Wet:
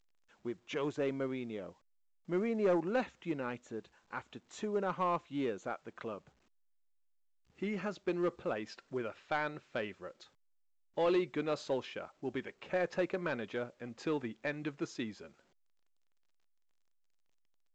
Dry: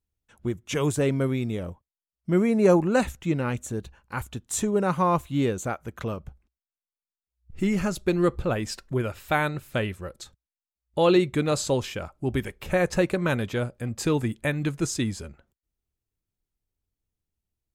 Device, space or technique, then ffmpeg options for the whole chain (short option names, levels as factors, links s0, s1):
telephone: -af "highpass=270,lowpass=3400,asoftclip=type=tanh:threshold=0.178,volume=0.398" -ar 16000 -c:a pcm_alaw